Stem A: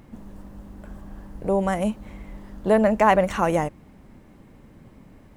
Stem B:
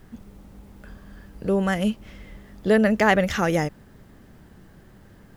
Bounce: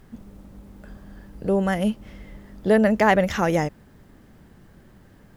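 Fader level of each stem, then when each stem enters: -10.0 dB, -2.0 dB; 0.00 s, 0.00 s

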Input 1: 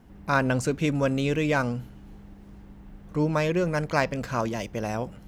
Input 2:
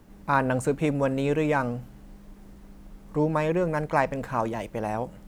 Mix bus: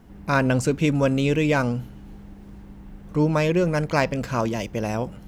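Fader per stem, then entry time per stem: +3.0 dB, -8.5 dB; 0.00 s, 0.00 s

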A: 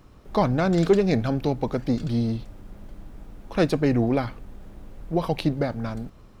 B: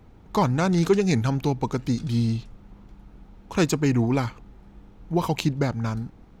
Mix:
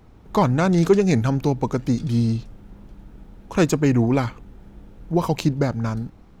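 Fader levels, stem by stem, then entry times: -7.0 dB, +0.5 dB; 0.00 s, 0.00 s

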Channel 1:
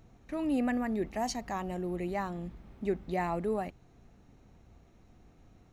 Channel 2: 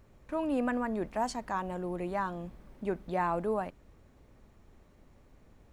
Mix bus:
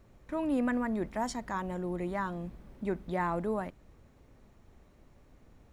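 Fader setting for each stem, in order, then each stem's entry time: -9.0 dB, -0.5 dB; 0.00 s, 0.00 s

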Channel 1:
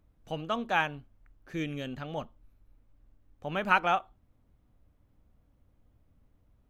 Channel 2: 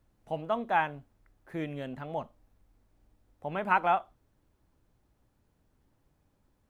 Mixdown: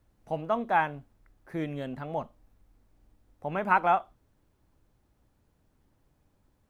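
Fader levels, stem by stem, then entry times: -13.5 dB, +1.5 dB; 0.00 s, 0.00 s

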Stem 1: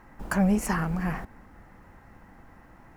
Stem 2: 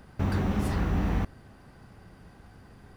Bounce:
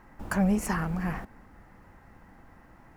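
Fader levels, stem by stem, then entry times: -2.0 dB, -19.0 dB; 0.00 s, 0.00 s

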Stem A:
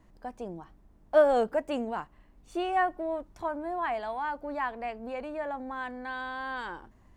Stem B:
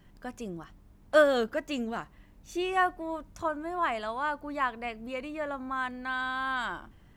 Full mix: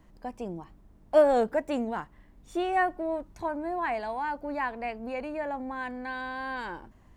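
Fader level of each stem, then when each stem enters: +1.5 dB, -10.5 dB; 0.00 s, 0.00 s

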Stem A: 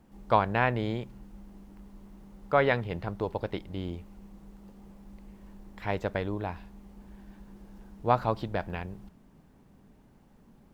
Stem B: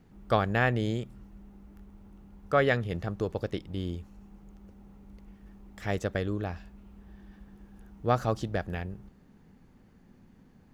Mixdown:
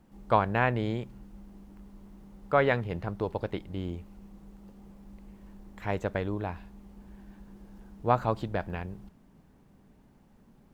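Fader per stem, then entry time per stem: -1.5 dB, -13.5 dB; 0.00 s, 0.00 s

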